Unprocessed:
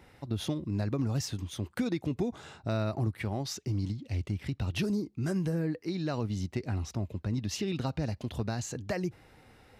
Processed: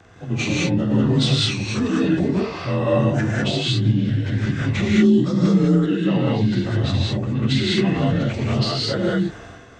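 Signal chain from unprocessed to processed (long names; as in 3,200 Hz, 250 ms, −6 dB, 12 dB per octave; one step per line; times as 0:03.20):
partials spread apart or drawn together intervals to 87%
transient designer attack 0 dB, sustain +8 dB
reverb whose tail is shaped and stops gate 230 ms rising, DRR −4.5 dB
level +8.5 dB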